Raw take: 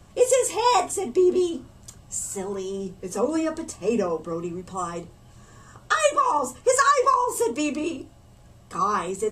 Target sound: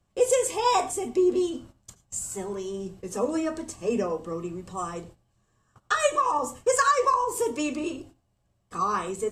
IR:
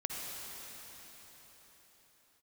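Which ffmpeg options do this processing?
-filter_complex "[0:a]agate=range=0.126:threshold=0.00708:ratio=16:detection=peak,asplit=2[s0][s1];[1:a]atrim=start_sample=2205,afade=t=out:st=0.13:d=0.01,atrim=end_sample=6174,asetrate=31752,aresample=44100[s2];[s1][s2]afir=irnorm=-1:irlink=0,volume=0.355[s3];[s0][s3]amix=inputs=2:normalize=0,volume=0.531"

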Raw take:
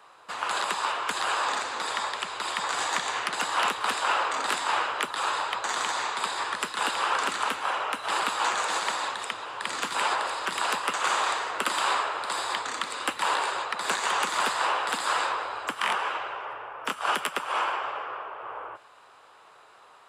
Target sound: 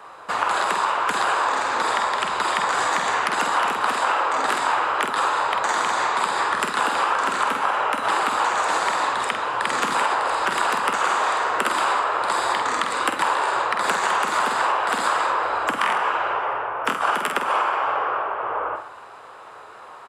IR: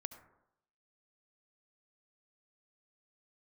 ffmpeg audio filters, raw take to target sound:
-filter_complex "[0:a]asplit=2[s0][s1];[s1]adelay=48,volume=0.473[s2];[s0][s2]amix=inputs=2:normalize=0,asplit=2[s3][s4];[1:a]atrim=start_sample=2205,lowpass=2200[s5];[s4][s5]afir=irnorm=-1:irlink=0,volume=1.58[s6];[s3][s6]amix=inputs=2:normalize=0,acompressor=threshold=0.0631:ratio=6,volume=2"

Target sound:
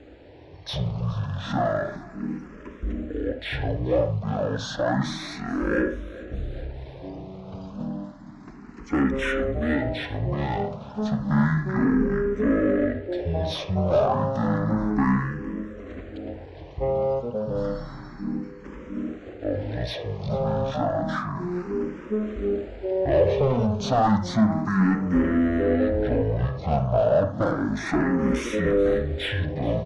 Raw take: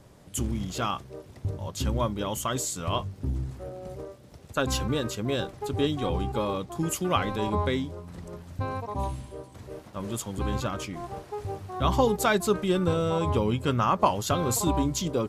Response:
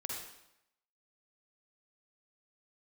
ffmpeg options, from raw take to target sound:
-filter_complex "[0:a]asplit=2[s0][s1];[s1]highpass=f=720:p=1,volume=15.8,asoftclip=type=tanh:threshold=0.422[s2];[s0][s2]amix=inputs=2:normalize=0,lowpass=f=2800:p=1,volume=0.501,aecho=1:1:219|438|657|876|1095:0.112|0.0662|0.0391|0.023|0.0136,asetrate=22579,aresample=44100,asplit=2[s3][s4];[1:a]atrim=start_sample=2205,atrim=end_sample=3969,lowpass=2300[s5];[s4][s5]afir=irnorm=-1:irlink=0,volume=0.841[s6];[s3][s6]amix=inputs=2:normalize=0,asplit=2[s7][s8];[s8]afreqshift=0.31[s9];[s7][s9]amix=inputs=2:normalize=1,volume=0.531"

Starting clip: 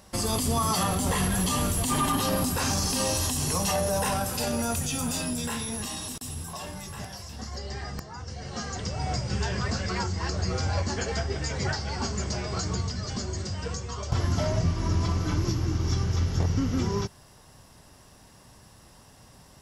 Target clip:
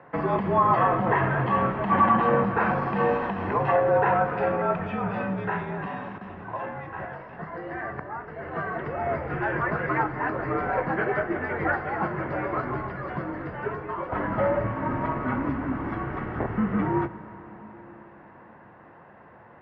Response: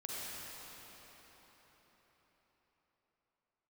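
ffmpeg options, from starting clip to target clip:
-filter_complex "[0:a]aemphasis=mode=production:type=bsi,highpass=f=150:t=q:w=0.5412,highpass=f=150:t=q:w=1.307,lowpass=f=2000:t=q:w=0.5176,lowpass=f=2000:t=q:w=0.7071,lowpass=f=2000:t=q:w=1.932,afreqshift=-55,bandreject=f=60:t=h:w=6,bandreject=f=120:t=h:w=6,bandreject=f=180:t=h:w=6,asplit=2[s0][s1];[1:a]atrim=start_sample=2205[s2];[s1][s2]afir=irnorm=-1:irlink=0,volume=0.224[s3];[s0][s3]amix=inputs=2:normalize=0,volume=2.24"

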